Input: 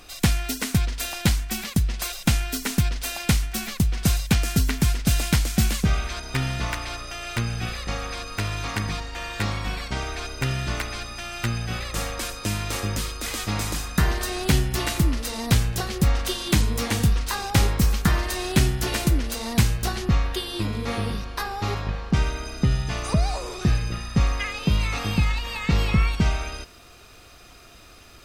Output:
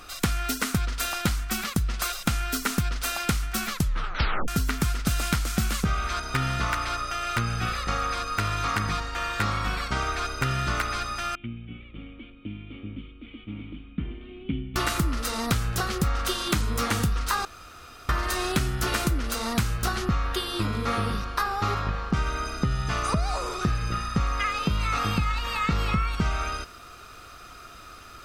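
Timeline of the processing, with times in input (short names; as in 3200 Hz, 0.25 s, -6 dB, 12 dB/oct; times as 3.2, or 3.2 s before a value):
3.73 tape stop 0.75 s
11.35–14.76 vocal tract filter i
17.45–18.09 room tone
whole clip: bell 1300 Hz +12.5 dB 0.4 oct; compressor, threshold -21 dBFS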